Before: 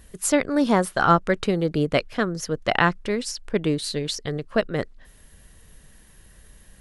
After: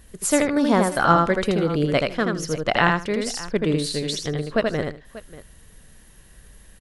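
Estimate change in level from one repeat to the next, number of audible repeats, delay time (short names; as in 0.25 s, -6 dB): no steady repeat, 3, 80 ms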